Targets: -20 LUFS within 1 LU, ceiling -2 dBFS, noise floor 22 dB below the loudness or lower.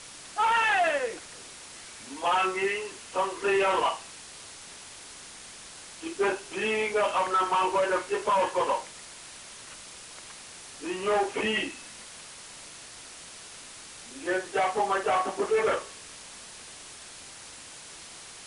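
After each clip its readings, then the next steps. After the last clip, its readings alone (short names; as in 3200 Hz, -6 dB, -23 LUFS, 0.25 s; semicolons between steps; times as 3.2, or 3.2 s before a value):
noise floor -46 dBFS; noise floor target -49 dBFS; loudness -27.0 LUFS; peak -17.5 dBFS; loudness target -20.0 LUFS
-> denoiser 6 dB, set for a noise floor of -46 dBFS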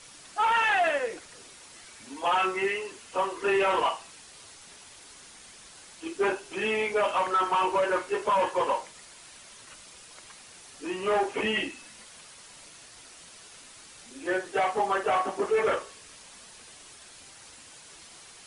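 noise floor -50 dBFS; loudness -27.0 LUFS; peak -17.5 dBFS; loudness target -20.0 LUFS
-> gain +7 dB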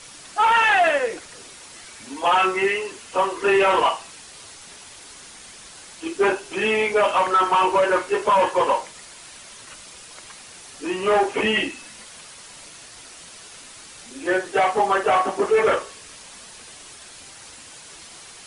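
loudness -20.0 LUFS; peak -10.5 dBFS; noise floor -43 dBFS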